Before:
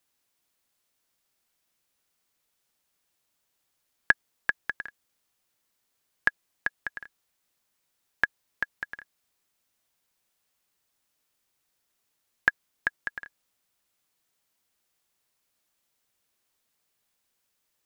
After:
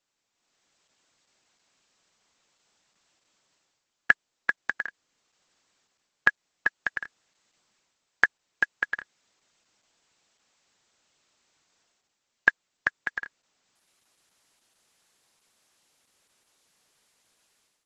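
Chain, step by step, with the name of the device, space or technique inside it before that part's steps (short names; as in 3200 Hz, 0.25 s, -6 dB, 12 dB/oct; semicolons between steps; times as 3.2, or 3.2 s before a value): video call (HPF 120 Hz 12 dB/oct; AGC gain up to 12.5 dB; gain -1.5 dB; Opus 12 kbps 48000 Hz)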